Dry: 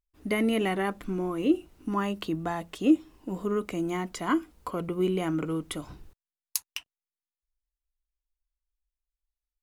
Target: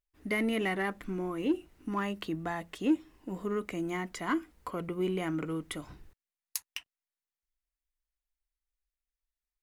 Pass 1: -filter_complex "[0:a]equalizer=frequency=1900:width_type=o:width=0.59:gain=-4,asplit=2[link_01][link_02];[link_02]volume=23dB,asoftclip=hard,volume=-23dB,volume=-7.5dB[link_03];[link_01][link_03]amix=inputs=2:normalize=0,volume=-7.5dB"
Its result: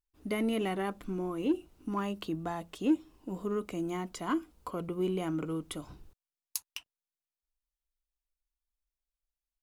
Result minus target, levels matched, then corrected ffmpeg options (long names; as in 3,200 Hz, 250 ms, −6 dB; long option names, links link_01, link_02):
2,000 Hz band −6.5 dB
-filter_complex "[0:a]equalizer=frequency=1900:width_type=o:width=0.59:gain=6.5,asplit=2[link_01][link_02];[link_02]volume=23dB,asoftclip=hard,volume=-23dB,volume=-7.5dB[link_03];[link_01][link_03]amix=inputs=2:normalize=0,volume=-7.5dB"